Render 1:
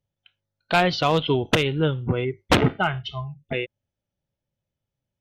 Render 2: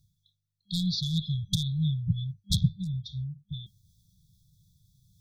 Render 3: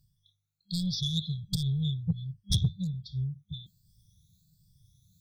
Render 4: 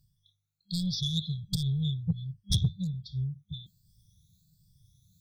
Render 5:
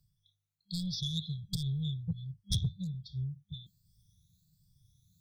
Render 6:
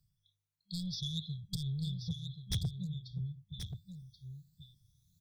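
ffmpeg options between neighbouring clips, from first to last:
ffmpeg -i in.wav -af "afftfilt=real='re*(1-between(b*sr/4096,200,3300))':imag='im*(1-between(b*sr/4096,200,3300))':win_size=4096:overlap=0.75,areverse,acompressor=mode=upward:threshold=-42dB:ratio=2.5,areverse,volume=-1.5dB" out.wav
ffmpeg -i in.wav -filter_complex "[0:a]afftfilt=real='re*pow(10,14/40*sin(2*PI*(1.3*log(max(b,1)*sr/1024/100)/log(2)-(1.3)*(pts-256)/sr)))':imag='im*pow(10,14/40*sin(2*PI*(1.3*log(max(b,1)*sr/1024/100)/log(2)-(1.3)*(pts-256)/sr)))':win_size=1024:overlap=0.75,asplit=2[link_01][link_02];[link_02]asoftclip=type=tanh:threshold=-25dB,volume=-7.5dB[link_03];[link_01][link_03]amix=inputs=2:normalize=0,volume=-5dB" out.wav
ffmpeg -i in.wav -af anull out.wav
ffmpeg -i in.wav -filter_complex "[0:a]acrossover=split=140|3000[link_01][link_02][link_03];[link_02]acompressor=threshold=-33dB:ratio=3[link_04];[link_01][link_04][link_03]amix=inputs=3:normalize=0,volume=-4dB" out.wav
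ffmpeg -i in.wav -af "aeval=exprs='0.0708*(abs(mod(val(0)/0.0708+3,4)-2)-1)':channel_layout=same,aecho=1:1:1081:0.376,volume=-3dB" out.wav

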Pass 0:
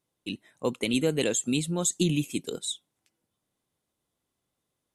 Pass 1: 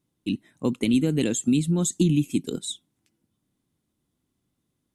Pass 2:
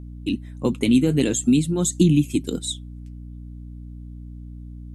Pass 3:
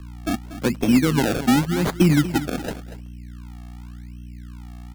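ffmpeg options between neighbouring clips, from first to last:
ffmpeg -i in.wav -af "lowshelf=frequency=380:width_type=q:width=1.5:gain=8.5,acompressor=threshold=-20dB:ratio=2" out.wav
ffmpeg -i in.wav -af "flanger=delay=0:depth=8.9:regen=-56:speed=0.48:shape=triangular,aeval=exprs='val(0)+0.00708*(sin(2*PI*60*n/s)+sin(2*PI*2*60*n/s)/2+sin(2*PI*3*60*n/s)/3+sin(2*PI*4*60*n/s)/4+sin(2*PI*5*60*n/s)/5)':channel_layout=same,volume=7.5dB" out.wav
ffmpeg -i in.wav -filter_complex "[0:a]acrossover=split=130[link_01][link_02];[link_02]acrusher=samples=30:mix=1:aa=0.000001:lfo=1:lforange=30:lforate=0.89[link_03];[link_01][link_03]amix=inputs=2:normalize=0,aecho=1:1:238:0.211" out.wav

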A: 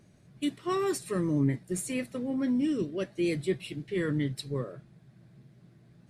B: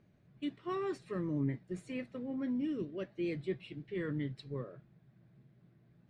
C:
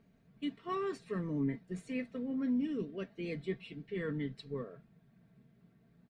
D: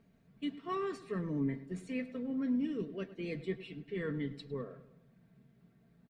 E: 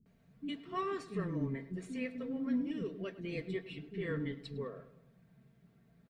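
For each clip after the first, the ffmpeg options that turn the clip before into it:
ffmpeg -i in.wav -af "lowpass=3200,volume=-7.5dB" out.wav
ffmpeg -i in.wav -af "aecho=1:1:4.4:0.54" out.wav
ffmpeg -i in.wav -filter_complex "[0:a]asplit=2[link_01][link_02];[link_02]adelay=103,lowpass=frequency=2400:poles=1,volume=-14.5dB,asplit=2[link_03][link_04];[link_04]adelay=103,lowpass=frequency=2400:poles=1,volume=0.5,asplit=2[link_05][link_06];[link_06]adelay=103,lowpass=frequency=2400:poles=1,volume=0.5,asplit=2[link_07][link_08];[link_08]adelay=103,lowpass=frequency=2400:poles=1,volume=0.5,asplit=2[link_09][link_10];[link_10]adelay=103,lowpass=frequency=2400:poles=1,volume=0.5[link_11];[link_01][link_03][link_05][link_07][link_09][link_11]amix=inputs=6:normalize=0" out.wav
ffmpeg -i in.wav -filter_complex "[0:a]acrossover=split=290[link_01][link_02];[link_02]adelay=60[link_03];[link_01][link_03]amix=inputs=2:normalize=0,volume=1dB" out.wav

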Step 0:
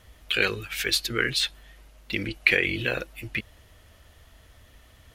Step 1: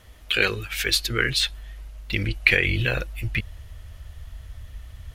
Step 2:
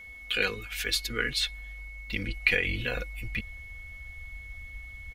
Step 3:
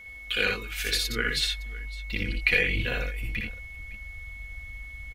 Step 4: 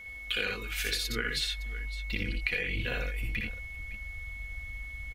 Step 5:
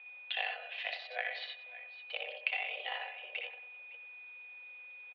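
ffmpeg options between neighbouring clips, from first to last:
ffmpeg -i in.wav -af "asubboost=boost=6.5:cutoff=120,volume=2.5dB" out.wav
ffmpeg -i in.wav -af "aecho=1:1:4.1:0.53,aeval=exprs='val(0)+0.0158*sin(2*PI*2200*n/s)':channel_layout=same,volume=-7.5dB" out.wav
ffmpeg -i in.wav -af "aecho=1:1:60|82|559:0.668|0.473|0.112" out.wav
ffmpeg -i in.wav -af "acompressor=threshold=-28dB:ratio=6" out.wav
ffmpeg -i in.wav -filter_complex "[0:a]asplit=2[link_01][link_02];[link_02]adelay=93,lowpass=frequency=1600:poles=1,volume=-9dB,asplit=2[link_03][link_04];[link_04]adelay=93,lowpass=frequency=1600:poles=1,volume=0.51,asplit=2[link_05][link_06];[link_06]adelay=93,lowpass=frequency=1600:poles=1,volume=0.51,asplit=2[link_07][link_08];[link_08]adelay=93,lowpass=frequency=1600:poles=1,volume=0.51,asplit=2[link_09][link_10];[link_10]adelay=93,lowpass=frequency=1600:poles=1,volume=0.51,asplit=2[link_11][link_12];[link_12]adelay=93,lowpass=frequency=1600:poles=1,volume=0.51[link_13];[link_01][link_03][link_05][link_07][link_09][link_11][link_13]amix=inputs=7:normalize=0,aeval=exprs='0.211*(cos(1*acos(clip(val(0)/0.211,-1,1)))-cos(1*PI/2))+0.0133*(cos(7*acos(clip(val(0)/0.211,-1,1)))-cos(7*PI/2))':channel_layout=same,highpass=frequency=240:width_type=q:width=0.5412,highpass=frequency=240:width_type=q:width=1.307,lowpass=frequency=3200:width_type=q:width=0.5176,lowpass=frequency=3200:width_type=q:width=0.7071,lowpass=frequency=3200:width_type=q:width=1.932,afreqshift=270,volume=-1.5dB" out.wav

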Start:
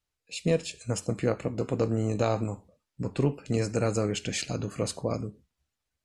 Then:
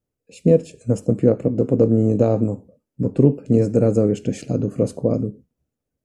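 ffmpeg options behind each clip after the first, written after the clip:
ffmpeg -i in.wav -af "equalizer=frequency=125:width_type=o:width=1:gain=8,equalizer=frequency=250:width_type=o:width=1:gain=11,equalizer=frequency=500:width_type=o:width=1:gain=10,equalizer=frequency=1000:width_type=o:width=1:gain=-5,equalizer=frequency=2000:width_type=o:width=1:gain=-5,equalizer=frequency=4000:width_type=o:width=1:gain=-10,equalizer=frequency=8000:width_type=o:width=1:gain=-3" out.wav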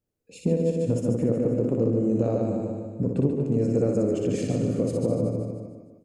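ffmpeg -i in.wav -filter_complex "[0:a]asplit=2[link_01][link_02];[link_02]aecho=0:1:150|300|450|600|750:0.447|0.192|0.0826|0.0355|0.0153[link_03];[link_01][link_03]amix=inputs=2:normalize=0,acompressor=threshold=-18dB:ratio=6,asplit=2[link_04][link_05];[link_05]aecho=0:1:60|138|239.4|371.2|542.6:0.631|0.398|0.251|0.158|0.1[link_06];[link_04][link_06]amix=inputs=2:normalize=0,volume=-3dB" out.wav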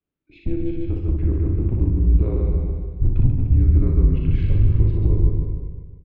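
ffmpeg -i in.wav -filter_complex "[0:a]highpass=frequency=200:width_type=q:width=0.5412,highpass=frequency=200:width_type=q:width=1.307,lowpass=frequency=3600:width_type=q:width=0.5176,lowpass=frequency=3600:width_type=q:width=0.7071,lowpass=frequency=3600:width_type=q:width=1.932,afreqshift=-160,asubboost=boost=10.5:cutoff=91,asplit=2[link_01][link_02];[link_02]adelay=38,volume=-8dB[link_03];[link_01][link_03]amix=inputs=2:normalize=0" out.wav

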